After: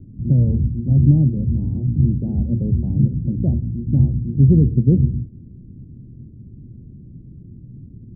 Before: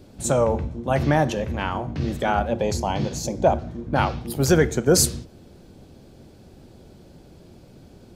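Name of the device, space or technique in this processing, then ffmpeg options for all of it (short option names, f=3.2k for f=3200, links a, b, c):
the neighbour's flat through the wall: -af "lowpass=f=260:w=0.5412,lowpass=f=260:w=1.3066,equalizer=f=120:t=o:w=0.47:g=8,volume=7.5dB"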